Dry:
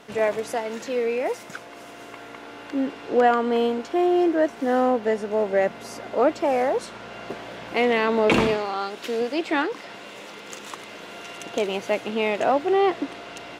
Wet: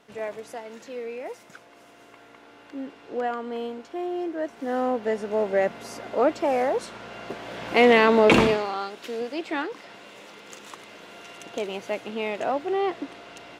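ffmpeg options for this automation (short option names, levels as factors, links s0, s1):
-af "volume=1.78,afade=t=in:st=4.33:d=1.03:silence=0.375837,afade=t=in:st=7.39:d=0.51:silence=0.473151,afade=t=out:st=7.9:d=1.08:silence=0.298538"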